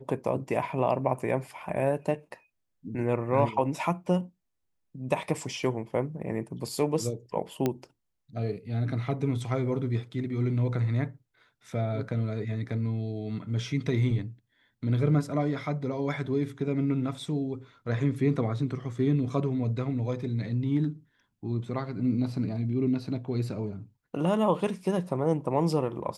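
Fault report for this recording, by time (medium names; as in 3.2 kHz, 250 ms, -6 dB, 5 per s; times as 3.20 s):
7.66 s: pop -13 dBFS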